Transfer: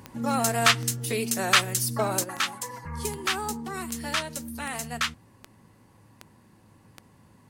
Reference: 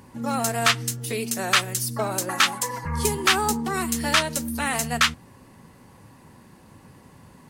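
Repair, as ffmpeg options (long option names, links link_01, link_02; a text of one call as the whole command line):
ffmpeg -i in.wav -af "adeclick=threshold=4,bandreject=frequency=106.6:width_type=h:width=4,bandreject=frequency=213.2:width_type=h:width=4,bandreject=frequency=319.8:width_type=h:width=4,asetnsamples=nb_out_samples=441:pad=0,asendcmd='2.24 volume volume 8dB',volume=0dB" out.wav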